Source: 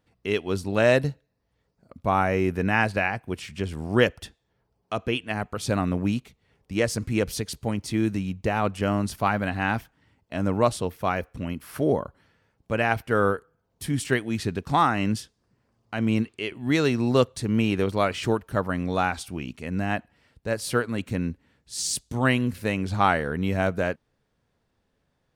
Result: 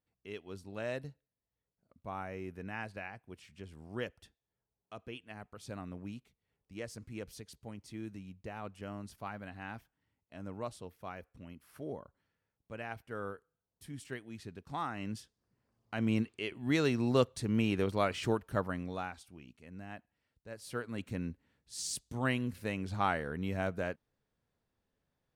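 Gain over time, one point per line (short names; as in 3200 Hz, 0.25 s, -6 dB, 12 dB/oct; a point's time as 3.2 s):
14.58 s -19 dB
15.94 s -7.5 dB
18.59 s -7.5 dB
19.27 s -20 dB
20.5 s -20 dB
20.99 s -10.5 dB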